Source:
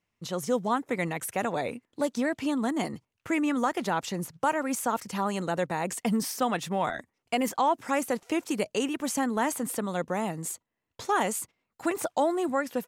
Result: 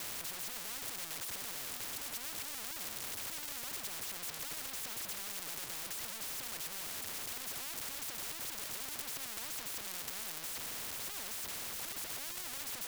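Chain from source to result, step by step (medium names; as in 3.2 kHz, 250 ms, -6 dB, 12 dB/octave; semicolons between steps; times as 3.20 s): one-bit comparator; spectrum-flattening compressor 10:1; trim +8 dB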